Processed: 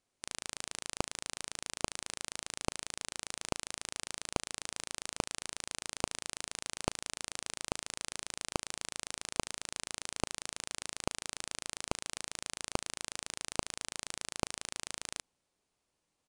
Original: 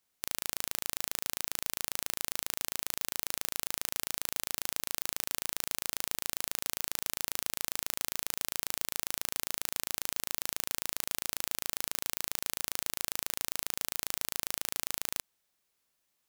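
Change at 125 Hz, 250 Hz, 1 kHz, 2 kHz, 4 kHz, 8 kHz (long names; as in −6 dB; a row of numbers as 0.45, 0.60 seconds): +5.5, +5.5, +1.5, −3.0, −3.0, −4.0 decibels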